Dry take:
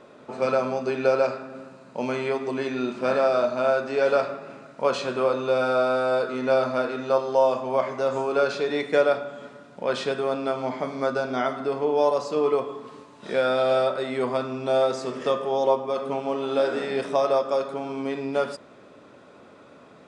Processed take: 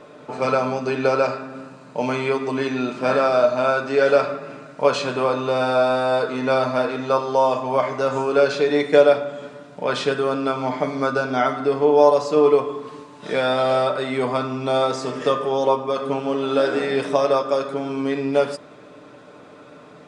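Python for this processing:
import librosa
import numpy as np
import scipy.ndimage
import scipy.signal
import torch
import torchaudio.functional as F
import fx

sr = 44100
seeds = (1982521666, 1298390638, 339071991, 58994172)

y = x + 0.47 * np.pad(x, (int(6.7 * sr / 1000.0), 0))[:len(x)]
y = y * librosa.db_to_amplitude(4.5)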